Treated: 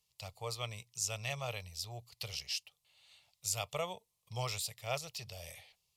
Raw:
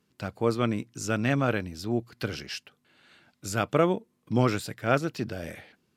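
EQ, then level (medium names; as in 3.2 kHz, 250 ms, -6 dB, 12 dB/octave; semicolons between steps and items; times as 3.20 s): amplifier tone stack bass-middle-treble 10-0-10; static phaser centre 640 Hz, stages 4; +3.0 dB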